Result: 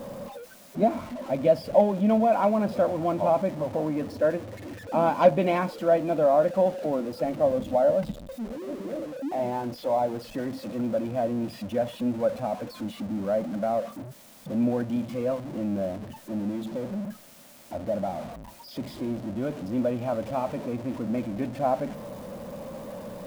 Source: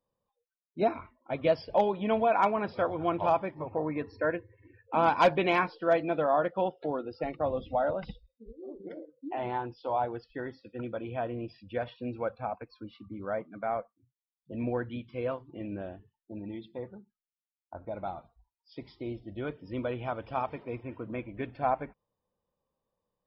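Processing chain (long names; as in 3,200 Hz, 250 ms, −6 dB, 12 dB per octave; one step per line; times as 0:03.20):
converter with a step at zero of −34 dBFS
hollow resonant body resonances 220/570 Hz, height 15 dB, ringing for 25 ms
level −6.5 dB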